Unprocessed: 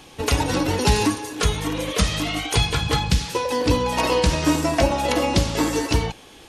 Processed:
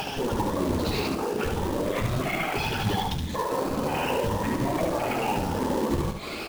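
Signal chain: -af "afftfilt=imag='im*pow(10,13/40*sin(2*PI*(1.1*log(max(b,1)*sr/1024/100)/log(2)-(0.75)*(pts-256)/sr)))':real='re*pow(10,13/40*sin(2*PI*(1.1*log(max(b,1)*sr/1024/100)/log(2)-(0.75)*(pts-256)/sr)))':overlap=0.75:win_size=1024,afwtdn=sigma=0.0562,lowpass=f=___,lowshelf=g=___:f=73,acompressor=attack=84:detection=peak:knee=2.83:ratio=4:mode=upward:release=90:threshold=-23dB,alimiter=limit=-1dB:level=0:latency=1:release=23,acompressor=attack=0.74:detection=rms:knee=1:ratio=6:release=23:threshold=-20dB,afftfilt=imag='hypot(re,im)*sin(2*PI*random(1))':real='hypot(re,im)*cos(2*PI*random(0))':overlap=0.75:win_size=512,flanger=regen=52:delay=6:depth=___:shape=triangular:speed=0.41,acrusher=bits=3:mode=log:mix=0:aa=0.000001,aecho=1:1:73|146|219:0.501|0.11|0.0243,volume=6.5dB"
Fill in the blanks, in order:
5k, -6, 9.3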